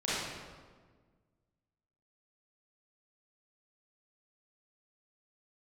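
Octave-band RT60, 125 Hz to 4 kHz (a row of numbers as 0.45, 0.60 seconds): 2.1, 2.0, 1.7, 1.4, 1.2, 1.0 seconds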